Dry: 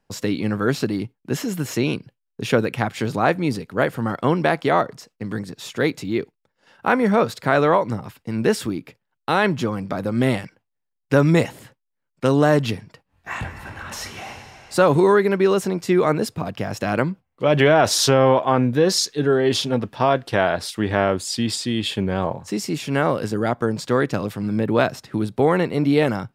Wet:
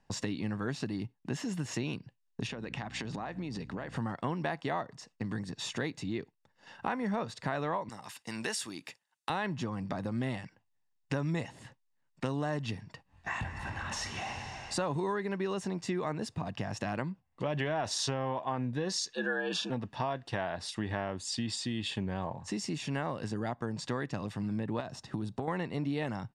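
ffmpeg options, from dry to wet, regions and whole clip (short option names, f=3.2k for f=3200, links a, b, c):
-filter_complex "[0:a]asettb=1/sr,asplit=3[a][b][c];[a]atrim=end=2.474[d];[b]atrim=start=2.47:end=3.96,asetpts=PTS-STARTPTS,afade=t=in:d=0.004:c=qsin,afade=t=out:st=1.486:d=0.004:c=qsin,acompressor=threshold=-29dB:ratio=8:attack=3.2:release=140:knee=1:detection=peak,aeval=exprs='val(0)+0.00708*(sin(2*PI*60*n/s)+sin(2*PI*2*60*n/s)/2+sin(2*PI*3*60*n/s)/3+sin(2*PI*4*60*n/s)/4+sin(2*PI*5*60*n/s)/5)':c=same,highpass=120,lowpass=7.1k[e];[c]atrim=start=3.956[f];[d][e]acrossfade=d=0.004:c1=hsin:c2=qsin[g];[g][f]acrossfade=d=0.004:c1=qsin:c2=hsin,asettb=1/sr,asplit=3[h][i][j];[h]atrim=end=7.894[k];[i]atrim=start=7.89:end=9.3,asetpts=PTS-STARTPTS,afade=t=in:d=0.004:c=qsin,afade=t=out:st=1.406:d=0.004:c=qsin,highpass=f=950:p=1,aemphasis=mode=production:type=50fm[l];[j]atrim=start=9.296[m];[k][l]acrossfade=d=0.004:c1=hsin:c2=qsin[n];[n][m]acrossfade=d=0.004:c1=qsin:c2=hsin,asettb=1/sr,asplit=3[o][p][q];[o]atrim=end=19.134[r];[p]atrim=start=19.13:end=19.7,asetpts=PTS-STARTPTS,afade=t=in:d=0.004:c=qsin,afade=t=out:st=0.566:d=0.004:c=qsin,afreqshift=69,asuperstop=centerf=2000:order=12:qfactor=4,equalizer=f=1.7k:t=o:w=0.84:g=14[s];[q]atrim=start=19.696[t];[r][s]acrossfade=d=0.004:c1=hsin:c2=qsin[u];[u][t]acrossfade=d=0.004:c1=qsin:c2=hsin,asettb=1/sr,asplit=3[v][w][x];[v]atrim=end=24.804[y];[w]atrim=start=24.8:end=25.48,asetpts=PTS-STARTPTS,afade=t=in:d=0.004:c=qsin,afade=t=out:st=0.676:d=0.004:c=qsin,equalizer=f=2.1k:w=1.7:g=-5.5,acompressor=threshold=-20dB:ratio=4:attack=3.2:release=140:knee=1:detection=peak[z];[x]atrim=start=25.476[aa];[y][z]acrossfade=d=0.004:c1=hsin:c2=qsin[ab];[ab][aa]acrossfade=d=0.004:c1=qsin:c2=hsin,lowpass=f=8.9k:w=0.5412,lowpass=f=8.9k:w=1.3066,aecho=1:1:1.1:0.37,acompressor=threshold=-36dB:ratio=3"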